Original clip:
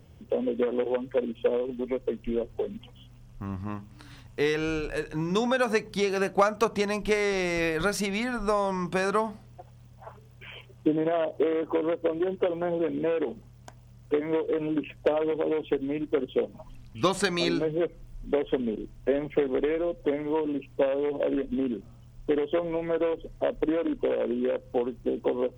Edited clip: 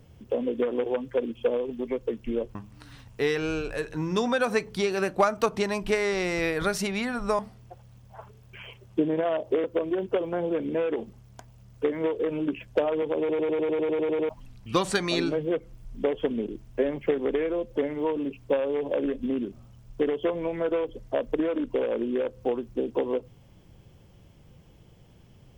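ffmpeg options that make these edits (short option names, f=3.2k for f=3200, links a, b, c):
-filter_complex "[0:a]asplit=15[a][b][c][d][e][f][g][h][i][j][k][l][m][n][o];[a]atrim=end=2.552[p];[b]atrim=start=3.738:end=8.582[q];[c]atrim=start=9.268:end=11.522[r];[d]atrim=start=11.928:end=15.582[s];[e]atrim=start=15.478:end=15.582[t];[f]atrim=start=15.478:end=15.582[u];[g]atrim=start=15.478:end=15.582[v];[h]atrim=start=15.478:end=15.582[w];[i]atrim=start=15.478:end=15.582[x];[j]atrim=start=15.478:end=15.582[y];[k]atrim=start=15.478:end=15.582[z];[l]atrim=start=15.478:end=15.582[aa];[m]atrim=start=15.478:end=15.582[ab];[n]atrim=start=15.478:end=15.582[ac];[o]atrim=start=16.578[ad];[p][q]acrossfade=d=0.004:c1=hsin:c2=hsin[ae];[ae][r]acrossfade=d=0.004:c1=hsin:c2=hsin[af];[af][s]acrossfade=d=0.004:c1=hsin:c2=hsin[ag];[ag][t]acrossfade=d=0.004:c1=hsin:c2=hsin[ah];[ah][u]acrossfade=d=0.004:c1=hsin:c2=hsin[ai];[ai][v]acrossfade=d=0.004:c1=hsin:c2=hsin[aj];[aj][w]acrossfade=d=0.004:c1=hsin:c2=hsin[ak];[ak][x]acrossfade=d=0.004:c1=hsin:c2=hsin[al];[al][y]acrossfade=d=0.004:c1=hsin:c2=hsin[am];[am][z]acrossfade=d=0.004:c1=hsin:c2=hsin[an];[an][aa]acrossfade=d=0.004:c1=hsin:c2=hsin[ao];[ao][ab]acrossfade=d=0.004:c1=hsin:c2=hsin[ap];[ap][ac]acrossfade=d=0.004:c1=hsin:c2=hsin[aq];[aq][ad]acrossfade=d=0.004:c1=hsin:c2=hsin"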